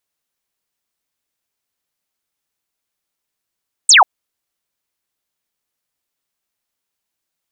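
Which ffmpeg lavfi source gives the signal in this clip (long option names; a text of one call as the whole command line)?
ffmpeg -f lavfi -i "aevalsrc='0.631*clip(t/0.002,0,1)*clip((0.14-t)/0.002,0,1)*sin(2*PI*8900*0.14/log(690/8900)*(exp(log(690/8900)*t/0.14)-1))':duration=0.14:sample_rate=44100" out.wav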